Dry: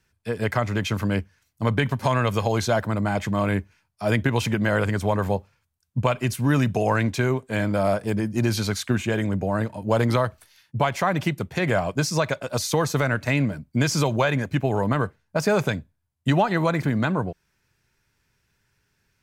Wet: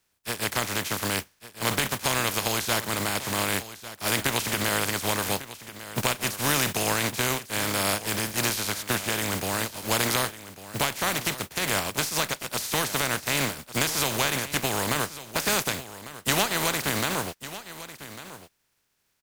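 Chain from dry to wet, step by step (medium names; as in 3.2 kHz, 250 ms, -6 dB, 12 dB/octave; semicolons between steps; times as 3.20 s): spectral contrast reduction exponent 0.31; delay 1149 ms -14.5 dB; trim -4 dB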